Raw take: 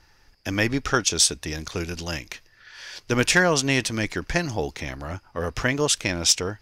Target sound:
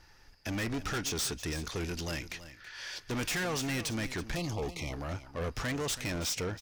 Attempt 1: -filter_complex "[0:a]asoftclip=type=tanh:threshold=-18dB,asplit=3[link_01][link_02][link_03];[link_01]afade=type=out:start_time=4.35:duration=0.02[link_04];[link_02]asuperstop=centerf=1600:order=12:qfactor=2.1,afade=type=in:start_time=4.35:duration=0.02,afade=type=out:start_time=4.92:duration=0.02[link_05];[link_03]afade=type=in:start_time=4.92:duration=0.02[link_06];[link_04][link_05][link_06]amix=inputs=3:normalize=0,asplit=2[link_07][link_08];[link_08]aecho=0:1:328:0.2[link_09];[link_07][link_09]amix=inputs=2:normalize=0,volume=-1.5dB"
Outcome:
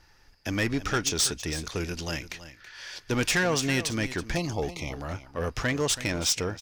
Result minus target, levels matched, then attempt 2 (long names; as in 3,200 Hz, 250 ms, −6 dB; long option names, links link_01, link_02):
soft clipping: distortion −7 dB
-filter_complex "[0:a]asoftclip=type=tanh:threshold=-29.5dB,asplit=3[link_01][link_02][link_03];[link_01]afade=type=out:start_time=4.35:duration=0.02[link_04];[link_02]asuperstop=centerf=1600:order=12:qfactor=2.1,afade=type=in:start_time=4.35:duration=0.02,afade=type=out:start_time=4.92:duration=0.02[link_05];[link_03]afade=type=in:start_time=4.92:duration=0.02[link_06];[link_04][link_05][link_06]amix=inputs=3:normalize=0,asplit=2[link_07][link_08];[link_08]aecho=0:1:328:0.2[link_09];[link_07][link_09]amix=inputs=2:normalize=0,volume=-1.5dB"